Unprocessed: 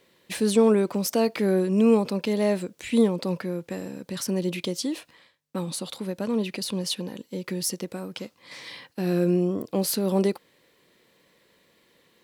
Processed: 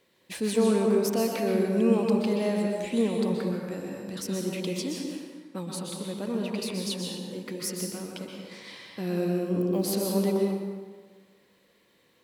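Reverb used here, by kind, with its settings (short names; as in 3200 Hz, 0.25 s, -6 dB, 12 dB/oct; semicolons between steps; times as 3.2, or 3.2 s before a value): plate-style reverb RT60 1.5 s, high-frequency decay 0.65×, pre-delay 0.11 s, DRR 0 dB; gain -5.5 dB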